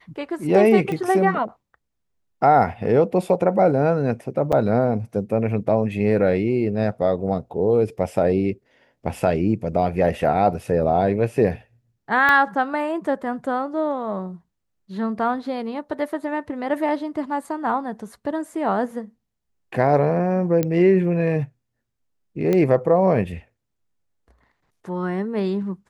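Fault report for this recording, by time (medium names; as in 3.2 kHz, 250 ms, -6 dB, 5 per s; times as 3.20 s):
0.92 s: pop -17 dBFS
4.52–4.53 s: dropout 6.4 ms
12.29 s: pop -8 dBFS
20.63 s: pop -9 dBFS
22.53 s: pop -10 dBFS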